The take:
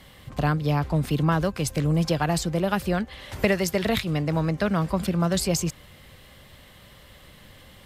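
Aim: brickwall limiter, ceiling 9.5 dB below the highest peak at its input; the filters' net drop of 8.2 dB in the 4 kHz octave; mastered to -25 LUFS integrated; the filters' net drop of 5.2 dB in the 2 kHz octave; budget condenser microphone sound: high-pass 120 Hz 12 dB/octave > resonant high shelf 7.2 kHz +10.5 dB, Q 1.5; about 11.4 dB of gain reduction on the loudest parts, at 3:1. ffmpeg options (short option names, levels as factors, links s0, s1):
-af "equalizer=f=2000:t=o:g=-4.5,equalizer=f=4000:t=o:g=-7,acompressor=threshold=0.0224:ratio=3,alimiter=level_in=1.41:limit=0.0631:level=0:latency=1,volume=0.708,highpass=120,highshelf=f=7200:t=q:w=1.5:g=10.5,volume=3.55"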